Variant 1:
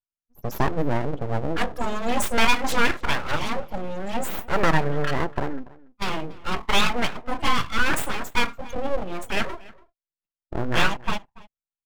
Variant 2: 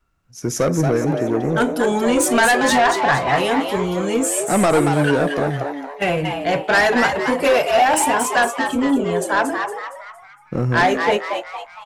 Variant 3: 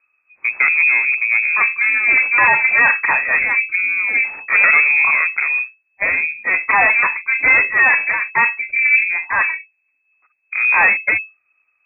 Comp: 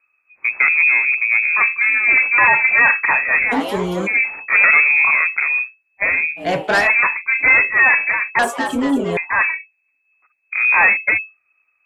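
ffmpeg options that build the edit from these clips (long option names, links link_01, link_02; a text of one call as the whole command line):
ffmpeg -i take0.wav -i take1.wav -i take2.wav -filter_complex "[1:a]asplit=3[link_01][link_02][link_03];[2:a]asplit=4[link_04][link_05][link_06][link_07];[link_04]atrim=end=3.53[link_08];[link_01]atrim=start=3.51:end=4.08[link_09];[link_05]atrim=start=4.06:end=6.46[link_10];[link_02]atrim=start=6.36:end=6.89[link_11];[link_06]atrim=start=6.79:end=8.392[link_12];[link_03]atrim=start=8.388:end=9.172[link_13];[link_07]atrim=start=9.168[link_14];[link_08][link_09]acrossfade=duration=0.02:curve1=tri:curve2=tri[link_15];[link_15][link_10]acrossfade=duration=0.02:curve1=tri:curve2=tri[link_16];[link_16][link_11]acrossfade=duration=0.1:curve1=tri:curve2=tri[link_17];[link_17][link_12]acrossfade=duration=0.1:curve1=tri:curve2=tri[link_18];[link_18][link_13]acrossfade=duration=0.004:curve1=hsin:curve2=hsin[link_19];[link_19][link_14]acrossfade=duration=0.004:curve1=hsin:curve2=hsin" out.wav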